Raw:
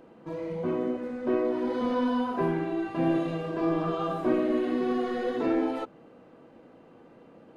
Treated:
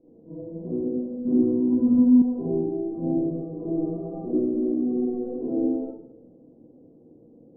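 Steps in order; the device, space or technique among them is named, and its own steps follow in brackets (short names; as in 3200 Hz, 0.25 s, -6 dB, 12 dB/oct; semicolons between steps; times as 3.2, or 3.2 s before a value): next room (LPF 490 Hz 24 dB/oct; reverb RT60 0.75 s, pre-delay 31 ms, DRR -8.5 dB); 1.25–2.22 graphic EQ 125/250/500/1000/2000/4000 Hz +10/+7/-7/+3/+12/+7 dB; gain -7.5 dB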